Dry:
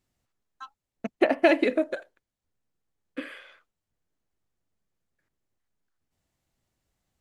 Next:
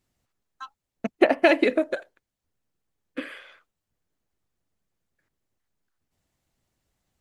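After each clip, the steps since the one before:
harmonic and percussive parts rebalanced harmonic −4 dB
level +4 dB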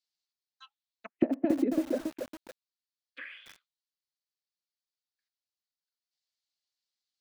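envelope filter 250–4,500 Hz, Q 3.4, down, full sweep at −18.5 dBFS
feedback echo at a low word length 279 ms, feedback 35%, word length 7 bits, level −5 dB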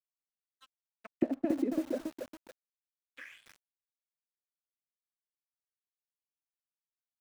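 dead-zone distortion −55.5 dBFS
level −3.5 dB

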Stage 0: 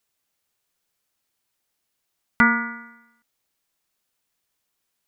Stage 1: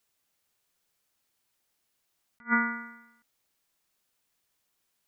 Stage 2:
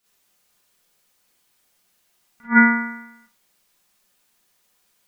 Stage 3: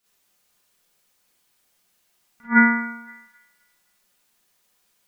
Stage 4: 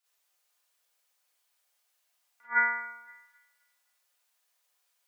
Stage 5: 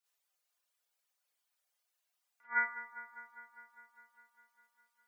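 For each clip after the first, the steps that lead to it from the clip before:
level that may rise only so fast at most 390 dB per second
four-comb reverb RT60 0.31 s, combs from 31 ms, DRR −8.5 dB; level +2 dB
delay with a high-pass on its return 259 ms, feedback 33%, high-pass 1,900 Hz, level −14.5 dB; level −1.5 dB
high-pass filter 520 Hz 24 dB per octave; level −8 dB
reverb reduction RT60 1 s; delay with a low-pass on its return 202 ms, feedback 73%, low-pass 1,700 Hz, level −11.5 dB; level −6 dB

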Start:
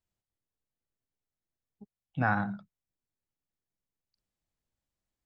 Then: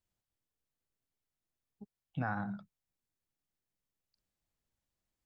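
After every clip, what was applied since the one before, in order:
dynamic equaliser 2,800 Hz, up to −7 dB, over −47 dBFS, Q 1.3
downward compressor 3 to 1, threshold −34 dBFS, peak gain reduction 8.5 dB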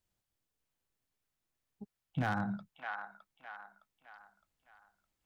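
wave folding −28 dBFS
delay with a band-pass on its return 612 ms, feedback 41%, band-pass 1,600 Hz, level −3 dB
level +3 dB

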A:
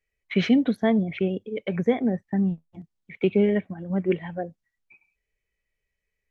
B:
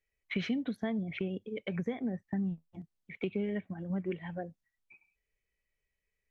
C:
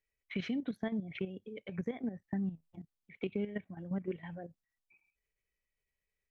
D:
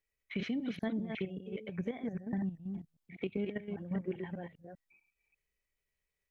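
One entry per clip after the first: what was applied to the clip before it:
downward compressor 3 to 1, threshold −26 dBFS, peak gain reduction 9 dB; dynamic equaliser 530 Hz, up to −4 dB, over −38 dBFS, Q 0.72; level −4 dB
output level in coarse steps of 11 dB
delay that plays each chunk backwards 198 ms, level −5 dB

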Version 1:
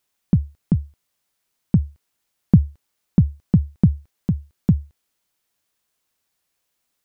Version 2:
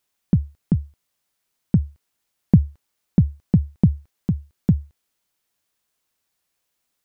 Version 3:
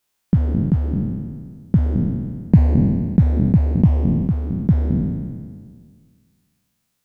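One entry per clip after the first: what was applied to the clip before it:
dynamic equaliser 1,100 Hz, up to +5 dB, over −39 dBFS, Q 0.73; level −1 dB
peak hold with a decay on every bin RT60 1.84 s

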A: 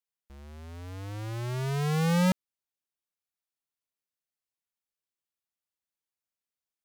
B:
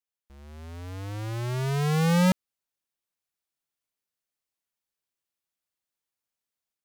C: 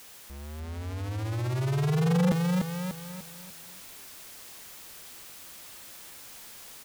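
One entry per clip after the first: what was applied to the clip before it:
automatic gain control gain up to 5.5 dB; level −2.5 dB
converter with a step at zero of −40 dBFS; on a send: repeating echo 296 ms, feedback 37%, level −4.5 dB; on the sum: saturating transformer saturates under 290 Hz

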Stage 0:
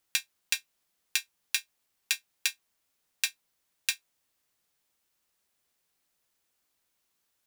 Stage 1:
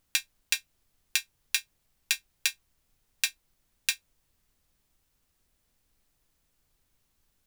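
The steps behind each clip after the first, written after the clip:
background noise brown −76 dBFS
level +1.5 dB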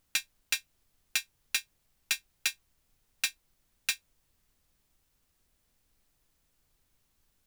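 hard clipping −19.5 dBFS, distortion −7 dB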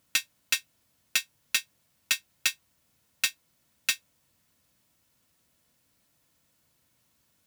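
high-pass filter 100 Hz 12 dB per octave
notch comb filter 400 Hz
level +6 dB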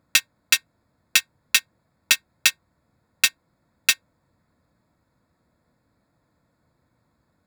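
adaptive Wiener filter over 15 samples
level +8.5 dB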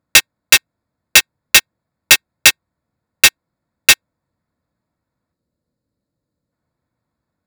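gain on a spectral selection 0:05.34–0:06.52, 620–3,700 Hz −8 dB
leveller curve on the samples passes 5
level +1.5 dB

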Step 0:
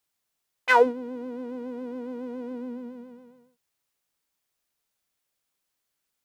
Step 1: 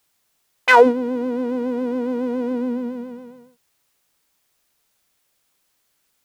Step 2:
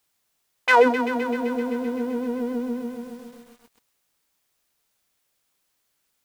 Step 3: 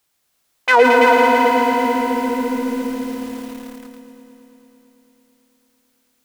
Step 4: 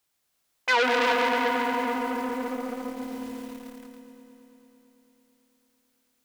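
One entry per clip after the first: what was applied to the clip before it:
boost into a limiter +13 dB; level −1 dB
feedback echo at a low word length 129 ms, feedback 80%, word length 7 bits, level −10 dB; level −4.5 dB
echo machine with several playback heads 111 ms, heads all three, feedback 67%, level −7.5 dB; feedback echo at a low word length 165 ms, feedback 55%, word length 6 bits, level −7 dB; level +3.5 dB
saturating transformer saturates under 2,300 Hz; level −7 dB

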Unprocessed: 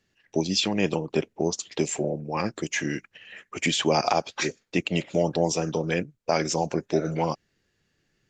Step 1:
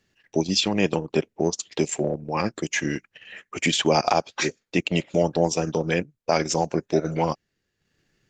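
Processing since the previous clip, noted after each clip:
transient designer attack −1 dB, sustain −8 dB
level +3 dB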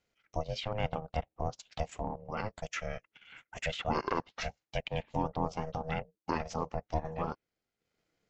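ring modulation 320 Hz
treble cut that deepens with the level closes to 2,900 Hz, closed at −22.5 dBFS
level −8.5 dB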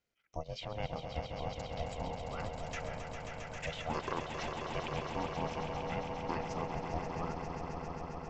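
echo that builds up and dies away 134 ms, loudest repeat 5, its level −8 dB
level −6 dB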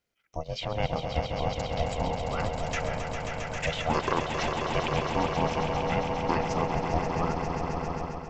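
automatic gain control gain up to 6.5 dB
level +3.5 dB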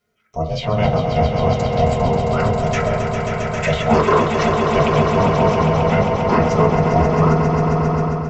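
convolution reverb RT60 0.35 s, pre-delay 4 ms, DRR −5.5 dB
level +4.5 dB

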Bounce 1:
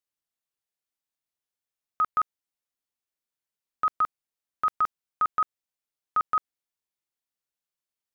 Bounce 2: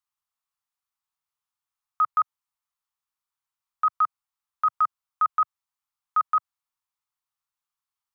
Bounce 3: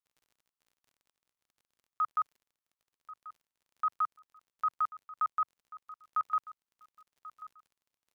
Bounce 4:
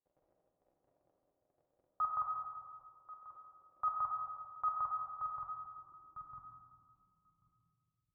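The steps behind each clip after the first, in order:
Chebyshev band-stop filter 120–1,100 Hz, order 2; flat-topped bell 950 Hz +9.5 dB 1.1 octaves; brickwall limiter −15.5 dBFS, peak gain reduction 5.5 dB
surface crackle 40 per second −46 dBFS; repeating echo 1,087 ms, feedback 24%, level −17 dB; level −8.5 dB
notch comb filter 220 Hz; low-pass filter sweep 600 Hz → 110 Hz, 0:04.78–0:08.03; comb and all-pass reverb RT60 2.1 s, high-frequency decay 0.3×, pre-delay 0 ms, DRR 1 dB; level +5.5 dB

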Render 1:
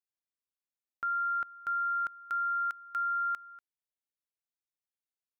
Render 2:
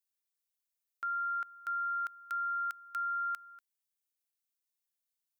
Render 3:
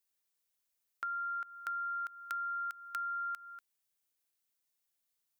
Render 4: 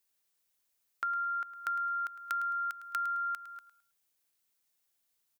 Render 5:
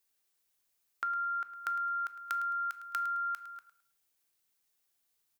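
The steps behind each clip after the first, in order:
spectral tilt +3.5 dB per octave; level −5 dB
downward compressor, threshold −41 dBFS, peak gain reduction 7.5 dB; level +4.5 dB
repeating echo 107 ms, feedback 27%, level −13.5 dB; level +4.5 dB
convolution reverb RT60 0.60 s, pre-delay 3 ms, DRR 11 dB

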